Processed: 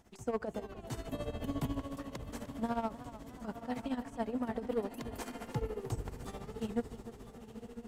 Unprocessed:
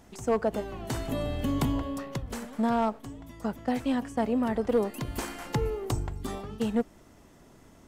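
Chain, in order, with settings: echo that smears into a reverb 982 ms, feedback 44%, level -10.5 dB; tremolo 14 Hz, depth 77%; modulated delay 303 ms, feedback 45%, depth 84 cents, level -15 dB; trim -6 dB

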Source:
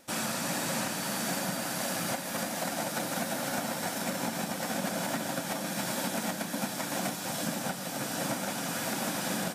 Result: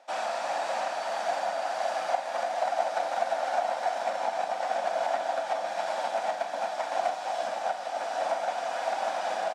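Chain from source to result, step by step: resonant high-pass 700 Hz, resonance Q 4.9; distance through air 120 m; doubling 46 ms -11 dB; trim -1.5 dB

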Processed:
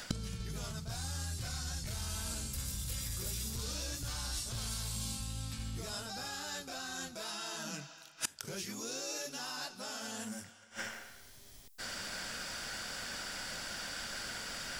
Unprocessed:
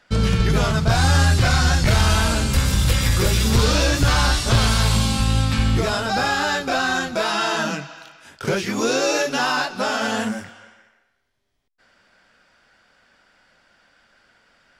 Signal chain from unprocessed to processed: reverse; compression, threshold -25 dBFS, peak gain reduction 12.5 dB; reverse; treble shelf 8.6 kHz +5.5 dB; inverted gate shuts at -36 dBFS, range -30 dB; tone controls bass +4 dB, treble +13 dB; trim +13 dB

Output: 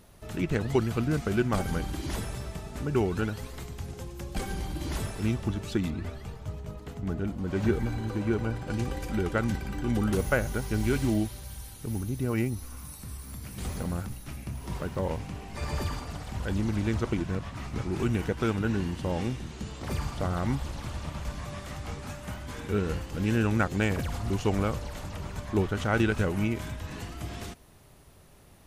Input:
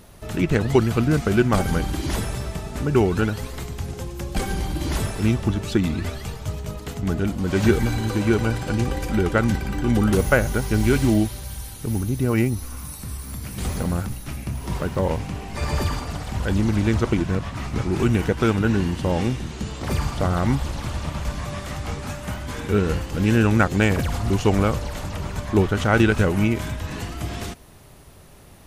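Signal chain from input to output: 5.90–8.70 s: treble shelf 2.5 kHz -9 dB; trim -8 dB

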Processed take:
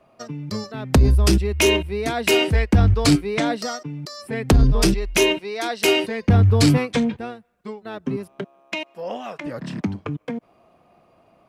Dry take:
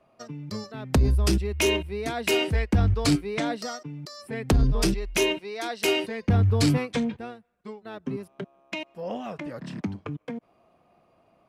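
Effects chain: 8.41–9.43 s: high-pass 190 Hz -> 760 Hz 6 dB/octave; trim +6 dB

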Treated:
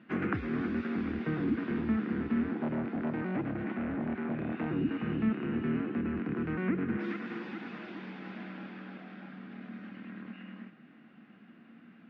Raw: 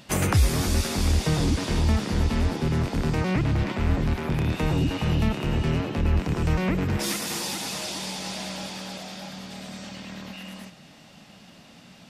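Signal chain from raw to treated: cabinet simulation 200–2200 Hz, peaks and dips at 230 Hz +10 dB, 330 Hz +6 dB, 590 Hz -10 dB, 890 Hz -9 dB, 1.5 kHz +5 dB; 2.53–4.70 s: transformer saturation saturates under 560 Hz; trim -7 dB

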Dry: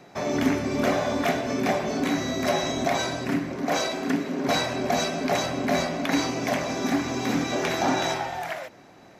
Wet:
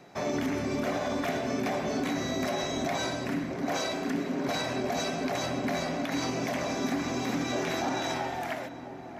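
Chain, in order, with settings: peak limiter -18.5 dBFS, peak gain reduction 8 dB; on a send: filtered feedback delay 661 ms, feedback 70%, low-pass 1.4 kHz, level -12 dB; on the sum: trim -3 dB

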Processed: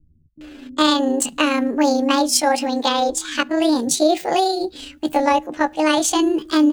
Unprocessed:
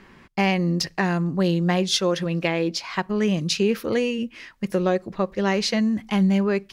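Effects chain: rotating-head pitch shifter +7.5 st; bands offset in time lows, highs 410 ms, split 160 Hz; trim +6 dB

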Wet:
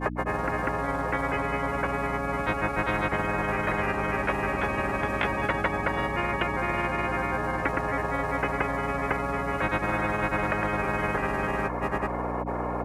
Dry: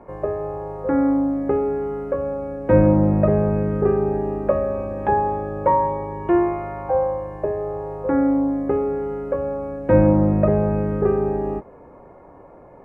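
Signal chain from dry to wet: granulator, grains 20 per s, spray 507 ms, pitch spread up and down by 0 st; hum 60 Hz, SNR 14 dB; spectrum-flattening compressor 10:1; trim -8.5 dB

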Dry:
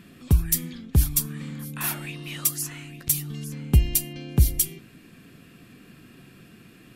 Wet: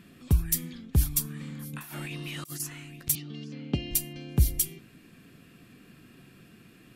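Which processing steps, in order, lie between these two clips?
1.73–2.60 s: compressor with a negative ratio -36 dBFS, ratio -1; 3.15–3.91 s: cabinet simulation 170–5000 Hz, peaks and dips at 280 Hz +6 dB, 580 Hz +7 dB, 1 kHz -5 dB, 1.6 kHz -3 dB, 3 kHz +4 dB, 4.5 kHz +3 dB; trim -4 dB

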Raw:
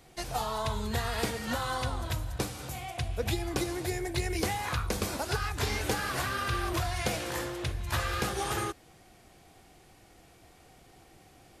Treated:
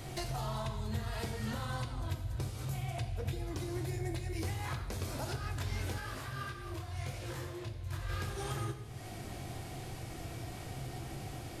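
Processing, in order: peaking EQ 120 Hz +14.5 dB 0.65 oct; compression 6:1, threshold -47 dBFS, peak gain reduction 26 dB; saturation -40 dBFS, distortion -19 dB; reverberation RT60 1.3 s, pre-delay 3 ms, DRR 4.5 dB; 5.99–8.08 s: detune thickener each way 28 cents -> 42 cents; trim +9.5 dB

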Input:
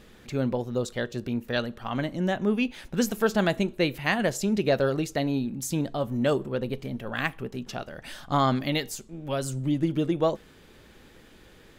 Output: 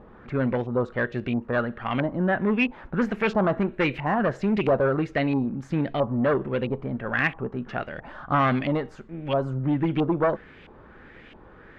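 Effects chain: Chebyshev shaper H 4 -15 dB, 5 -8 dB, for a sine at -10 dBFS; LFO low-pass saw up 1.5 Hz 880–2700 Hz; trim -6 dB

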